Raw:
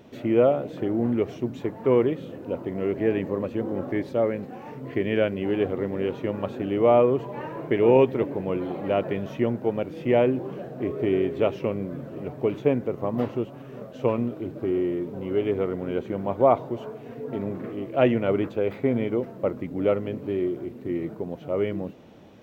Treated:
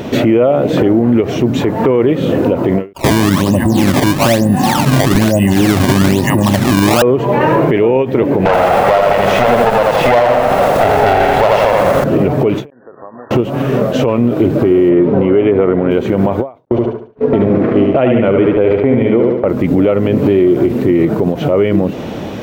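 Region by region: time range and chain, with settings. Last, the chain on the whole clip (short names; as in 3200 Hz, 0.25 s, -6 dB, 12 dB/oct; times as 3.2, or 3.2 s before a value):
2.93–7.02 comb 1.1 ms, depth 84% + three bands offset in time highs, mids, lows 30/110 ms, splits 810/2700 Hz + decimation with a swept rate 19×, swing 160% 1.1 Hz
8.45–12.04 minimum comb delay 1.5 ms + overdrive pedal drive 15 dB, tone 3200 Hz, clips at -10 dBFS + lo-fi delay 82 ms, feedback 55%, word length 8-bit, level -3 dB
12.7–13.31 differentiator + compressor 3:1, threshold -56 dBFS + brick-wall FIR low-pass 1900 Hz
14.89–15.91 LPF 2400 Hz + low shelf 72 Hz -11.5 dB
16.65–19.48 gate -34 dBFS, range -48 dB + air absorption 160 m + feedback echo 72 ms, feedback 38%, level -5 dB
whole clip: compressor 5:1, threshold -31 dBFS; maximiser +28.5 dB; ending taper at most 210 dB/s; gain -1.5 dB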